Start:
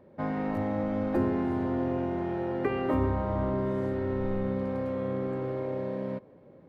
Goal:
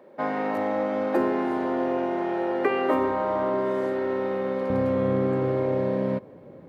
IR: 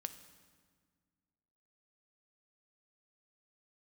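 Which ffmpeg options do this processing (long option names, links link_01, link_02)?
-af "asetnsamples=nb_out_samples=441:pad=0,asendcmd='4.7 highpass f 60',highpass=380,volume=8dB"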